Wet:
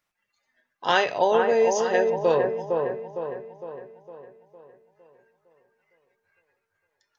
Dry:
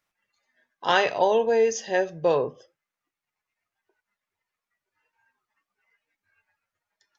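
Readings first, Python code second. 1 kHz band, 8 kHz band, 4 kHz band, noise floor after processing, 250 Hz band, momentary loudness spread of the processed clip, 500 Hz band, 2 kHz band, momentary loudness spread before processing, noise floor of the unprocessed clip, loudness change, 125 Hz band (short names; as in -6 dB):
+1.5 dB, n/a, 0.0 dB, -79 dBFS, +1.5 dB, 18 LU, +2.0 dB, +0.5 dB, 6 LU, under -85 dBFS, 0.0 dB, +1.5 dB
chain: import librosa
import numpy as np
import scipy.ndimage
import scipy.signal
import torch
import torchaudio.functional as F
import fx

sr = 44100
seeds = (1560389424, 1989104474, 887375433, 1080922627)

p1 = x + fx.echo_wet_lowpass(x, sr, ms=458, feedback_pct=49, hz=1600.0, wet_db=-4.0, dry=0)
y = fx.end_taper(p1, sr, db_per_s=180.0)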